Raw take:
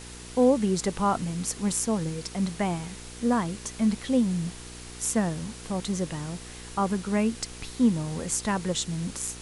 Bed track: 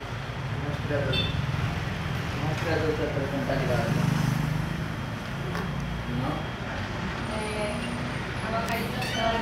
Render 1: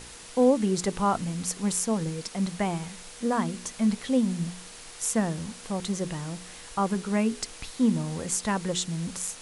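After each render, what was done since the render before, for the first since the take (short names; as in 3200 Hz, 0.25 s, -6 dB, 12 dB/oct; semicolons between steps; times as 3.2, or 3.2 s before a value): de-hum 60 Hz, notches 7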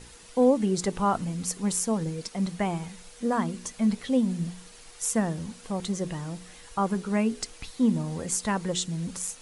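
denoiser 7 dB, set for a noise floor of -45 dBFS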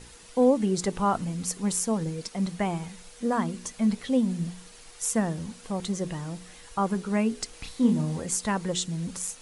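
7.5–8.2 doubler 33 ms -5 dB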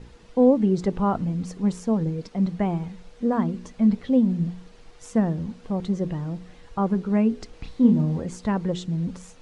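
LPF 4600 Hz 12 dB/oct; tilt shelf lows +6 dB, about 820 Hz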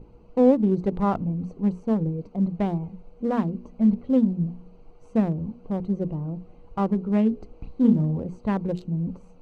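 Wiener smoothing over 25 samples; notches 60/120/180/240 Hz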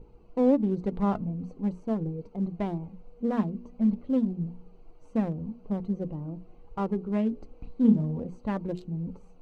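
flange 0.44 Hz, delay 2.1 ms, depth 2.7 ms, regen +59%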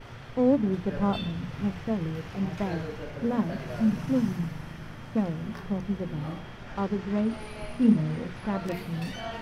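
add bed track -10.5 dB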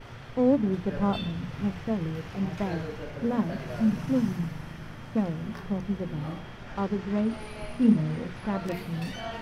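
nothing audible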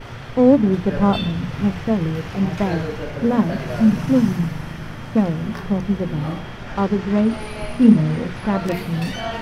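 gain +9.5 dB; limiter -1 dBFS, peak gain reduction 1 dB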